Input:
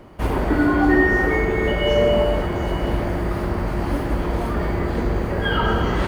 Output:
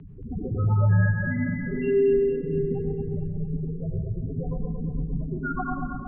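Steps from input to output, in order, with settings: fade out at the end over 0.60 s; treble shelf 2.2 kHz -3.5 dB; in parallel at -1.5 dB: compressor with a negative ratio -23 dBFS, ratio -0.5; on the sum: saturation -20.5 dBFS, distortion -9 dB; bit crusher 9-bit; loudest bins only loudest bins 8; 4.16–5.17 s: doubling 22 ms -9.5 dB; two-band feedback delay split 560 Hz, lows 132 ms, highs 228 ms, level -6.5 dB; on a send at -4.5 dB: reverberation, pre-delay 55 ms; on the sum: mistuned SSB -190 Hz 180–3300 Hz

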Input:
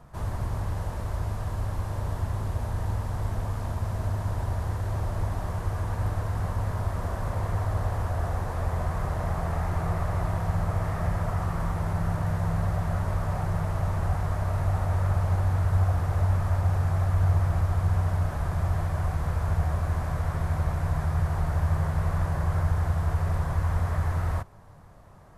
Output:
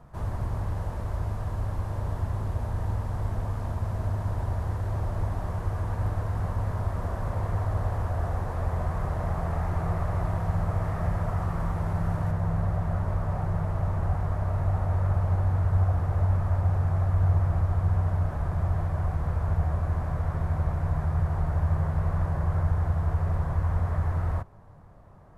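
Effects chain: treble shelf 2.2 kHz -7 dB, from 12.31 s -12 dB

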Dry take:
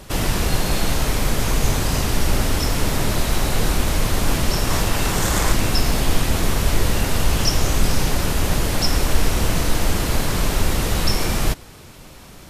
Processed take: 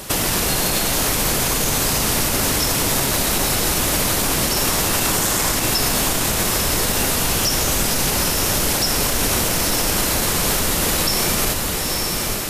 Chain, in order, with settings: bass shelf 110 Hz -12 dB; compression 2:1, threshold -27 dBFS, peak gain reduction 6.5 dB; treble shelf 6.3 kHz +9.5 dB; echo that smears into a reverb 922 ms, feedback 45%, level -5.5 dB; loudness maximiser +15.5 dB; trim -8 dB

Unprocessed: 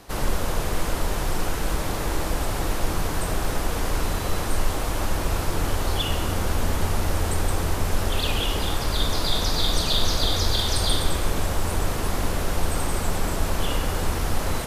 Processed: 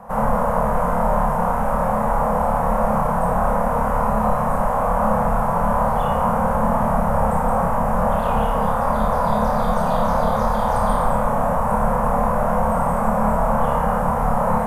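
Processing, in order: FFT filter 100 Hz 0 dB, 230 Hz +14 dB, 330 Hz -24 dB, 490 Hz +11 dB, 1 kHz +15 dB, 4.1 kHz -23 dB, 10 kHz -8 dB; on a send: flutter echo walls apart 4.8 m, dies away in 0.43 s; on the sum: trim -2 dB

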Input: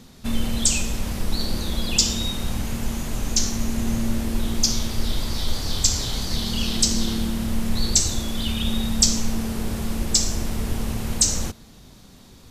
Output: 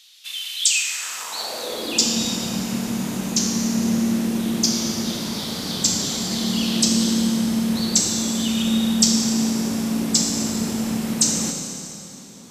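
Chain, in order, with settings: Schroeder reverb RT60 2.7 s, combs from 25 ms, DRR 2.5 dB; high-pass sweep 3.1 kHz -> 200 Hz, 0.66–2.18 s

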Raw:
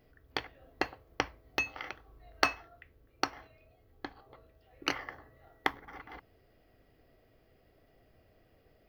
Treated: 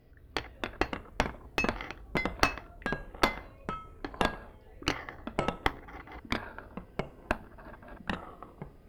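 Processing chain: Chebyshev shaper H 8 -22 dB, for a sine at -4 dBFS; ever faster or slower copies 175 ms, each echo -4 st, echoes 3; bass shelf 270 Hz +8.5 dB

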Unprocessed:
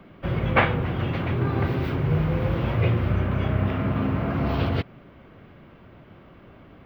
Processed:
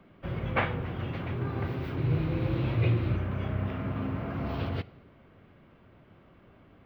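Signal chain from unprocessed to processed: 1.97–3.17 s: graphic EQ with 31 bands 125 Hz +8 dB, 315 Hz +11 dB, 2.5 kHz +5 dB, 4 kHz +10 dB; reverberation RT60 1.0 s, pre-delay 3 ms, DRR 18 dB; trim -8.5 dB

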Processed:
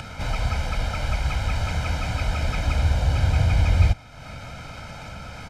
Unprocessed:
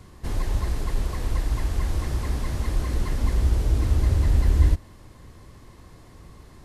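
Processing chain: low-pass 3 kHz 12 dB/octave; tilt EQ +2.5 dB/octave; comb 1.6 ms, depth 83%; upward compressor, threshold -33 dBFS; wide varispeed 1.21×; trim +5.5 dB

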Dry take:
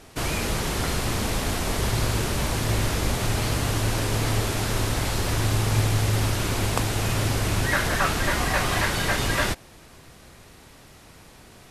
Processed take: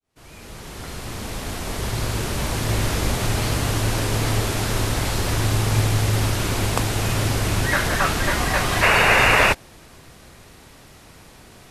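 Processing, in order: fade-in on the opening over 2.95 s; painted sound noise, 8.82–9.53 s, 390–2900 Hz -19 dBFS; trim +2.5 dB

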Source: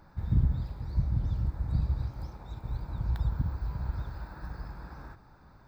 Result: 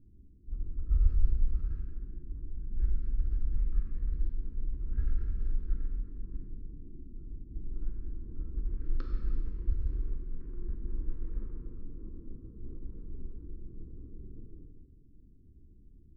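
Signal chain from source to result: local Wiener filter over 25 samples; level-controlled noise filter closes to 790 Hz, open at -24 dBFS; wide varispeed 0.351×; Butterworth band-stop 690 Hz, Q 1.1; gated-style reverb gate 460 ms falling, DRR 0.5 dB

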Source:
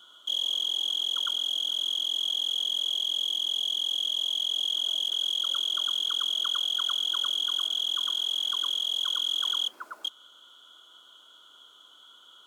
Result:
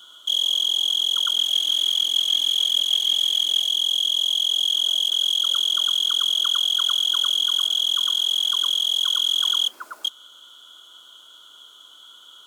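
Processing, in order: treble shelf 3.3 kHz +8.5 dB; 1.37–3.69 s: phaser 1.4 Hz, delay 4 ms, feedback 38%; trim +3 dB

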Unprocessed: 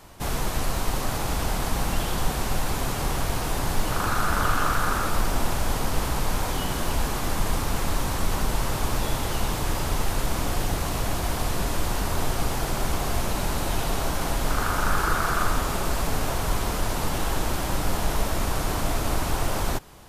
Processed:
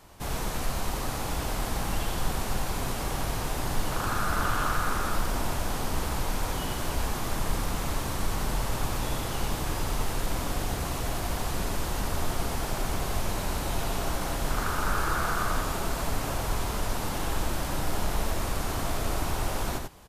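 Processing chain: delay 92 ms -5 dB; trim -5 dB

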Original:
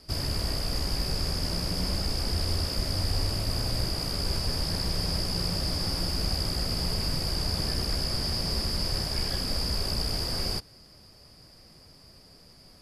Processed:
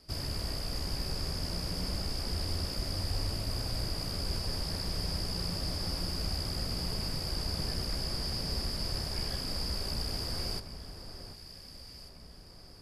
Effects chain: echo whose repeats swap between lows and highs 747 ms, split 1.8 kHz, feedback 65%, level -9.5 dB; trim -6 dB

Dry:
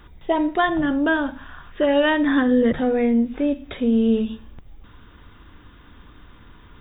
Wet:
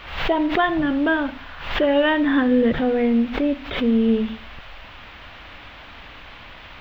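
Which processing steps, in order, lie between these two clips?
band noise 510–3200 Hz -43 dBFS; swell ahead of each attack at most 84 dB/s

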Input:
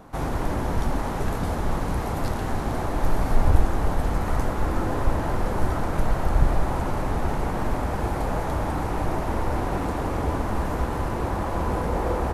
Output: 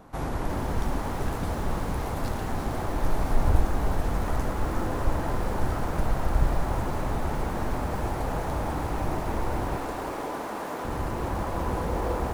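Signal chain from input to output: 9.76–10.85 s: high-pass 310 Hz 12 dB/octave; bit-crushed delay 357 ms, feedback 35%, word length 6-bit, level -9 dB; trim -3.5 dB

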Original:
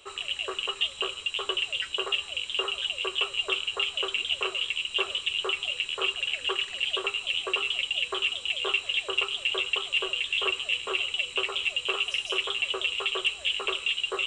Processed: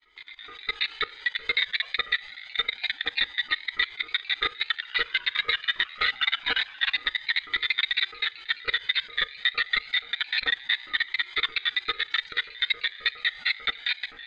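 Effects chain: ring modulator 850 Hz; 4.69–6.97 s: ever faster or slower copies 118 ms, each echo -4 st, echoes 2, each echo -6 dB; low-pass 4.1 kHz 24 dB/octave; wow and flutter 25 cents; level rider gain up to 16.5 dB; peaking EQ 200 Hz -13.5 dB 2.4 oct; hum notches 60/120 Hz; level held to a coarse grid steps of 20 dB; Shepard-style flanger rising 0.27 Hz; trim +1 dB

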